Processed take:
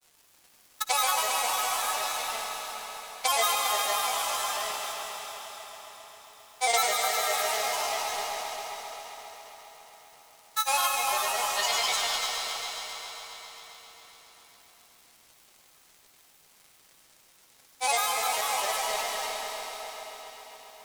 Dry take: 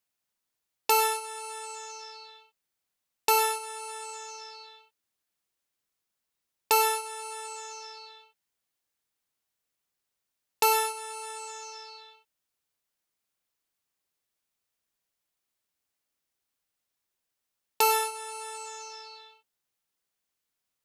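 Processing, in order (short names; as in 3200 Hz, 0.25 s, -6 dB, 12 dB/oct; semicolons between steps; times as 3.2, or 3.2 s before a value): per-bin compression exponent 0.4; formant-preserving pitch shift -7 st; elliptic high-pass 420 Hz; high shelf 3500 Hz +8.5 dB; in parallel at +2 dB: compressor, threshold -39 dBFS, peak gain reduction 20.5 dB; on the sum: spectral gain 11.64–12.69, 1500–7200 Hz +8 dB; crossover distortion -33.5 dBFS; grains, pitch spread up and down by 7 st; multi-head echo 0.134 s, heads all three, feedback 63%, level -13 dB; on a send at -2.5 dB: reverb RT60 4.5 s, pre-delay 56 ms; on the sum: gain -4 dB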